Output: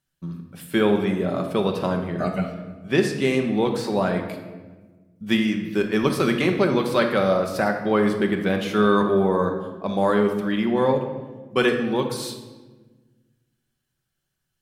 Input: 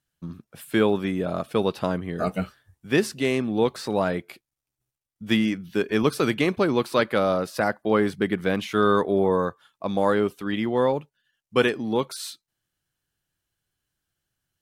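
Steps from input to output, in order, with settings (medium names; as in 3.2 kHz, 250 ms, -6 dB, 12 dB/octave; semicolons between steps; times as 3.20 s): 2.08–3.21 s: treble shelf 11 kHz -11 dB; reverberation RT60 1.3 s, pre-delay 5 ms, DRR 3.5 dB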